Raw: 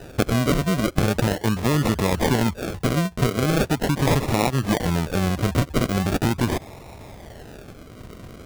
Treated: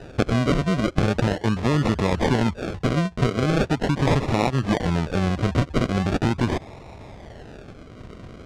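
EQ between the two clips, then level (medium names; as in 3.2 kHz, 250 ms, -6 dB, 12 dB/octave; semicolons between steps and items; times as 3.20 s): distance through air 89 m; 0.0 dB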